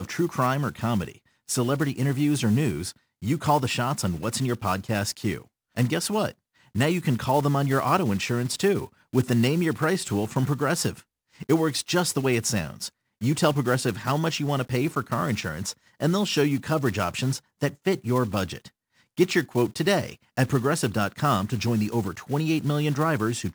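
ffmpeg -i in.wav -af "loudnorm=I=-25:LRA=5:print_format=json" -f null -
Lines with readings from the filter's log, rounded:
"input_i" : "-25.4",
"input_tp" : "-7.5",
"input_lra" : "1.5",
"input_thresh" : "-35.6",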